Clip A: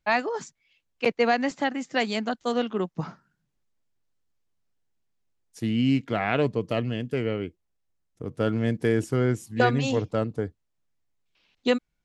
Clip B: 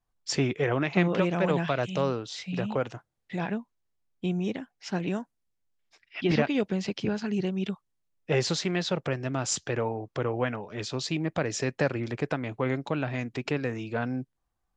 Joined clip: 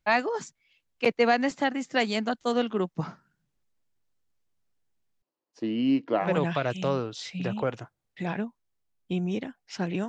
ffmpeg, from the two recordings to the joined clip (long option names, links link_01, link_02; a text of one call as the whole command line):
ffmpeg -i cue0.wav -i cue1.wav -filter_complex "[0:a]asettb=1/sr,asplit=3[link_01][link_02][link_03];[link_01]atrim=end=5.224[link_04];[link_02]atrim=start=5.22:end=6.3,asetpts=PTS-STARTPTS,afade=type=in:duration=0.004:curve=qsin,afade=type=out:start_time=1.076:duration=0.004:curve=qsin,highpass=300,equalizer=frequency=310:width_type=q:width=4:gain=8,equalizer=frequency=560:width_type=q:width=4:gain=6,equalizer=frequency=1000:width_type=q:width=4:gain=6,equalizer=frequency=1500:width_type=q:width=4:gain=-5,equalizer=frequency=2200:width_type=q:width=4:gain=-8,equalizer=frequency=3500:width_type=q:width=4:gain=-9,lowpass=frequency=4600:width=0.5412,lowpass=frequency=4600:width=1.3066[link_05];[link_03]atrim=start=6.296[link_06];[link_04][link_05]acrossfade=duration=0.004:curve1=hsin:curve2=qsin[link_07];[link_07][link_06]acrossfade=duration=0.004:curve1=qsin:curve2=hsin,apad=whole_dur=10.08,atrim=end=10.08,atrim=end=6.3,asetpts=PTS-STARTPTS[link_08];[1:a]atrim=start=1.33:end=5.21,asetpts=PTS-STARTPTS[link_09];[link_08][link_09]acrossfade=duration=0.1:curve1=tri:curve2=tri" out.wav